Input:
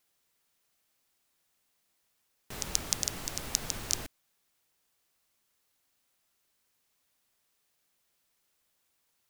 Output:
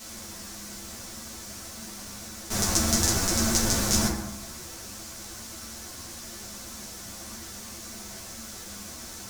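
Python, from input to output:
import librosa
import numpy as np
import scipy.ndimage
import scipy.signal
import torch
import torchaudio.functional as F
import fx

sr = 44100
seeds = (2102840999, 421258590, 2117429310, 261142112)

p1 = fx.bin_compress(x, sr, power=0.4)
p2 = fx.dynamic_eq(p1, sr, hz=3000.0, q=1.4, threshold_db=-52.0, ratio=4.0, max_db=-4)
p3 = p2 + fx.echo_single(p2, sr, ms=128, db=-14.5, dry=0)
p4 = fx.rev_fdn(p3, sr, rt60_s=0.86, lf_ratio=1.5, hf_ratio=0.35, size_ms=27.0, drr_db=-8.0)
p5 = fx.ensemble(p4, sr)
y = F.gain(torch.from_numpy(p5), 3.0).numpy()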